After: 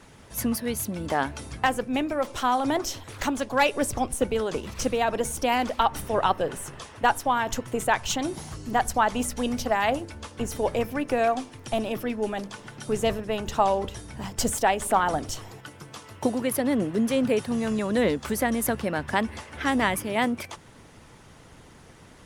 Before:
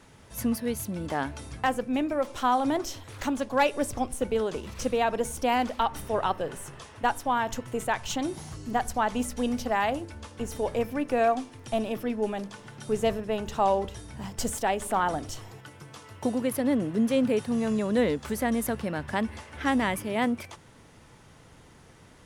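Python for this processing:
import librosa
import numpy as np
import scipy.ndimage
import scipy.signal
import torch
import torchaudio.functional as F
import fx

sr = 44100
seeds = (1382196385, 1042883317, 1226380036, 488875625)

y = fx.hpss(x, sr, part='percussive', gain_db=6)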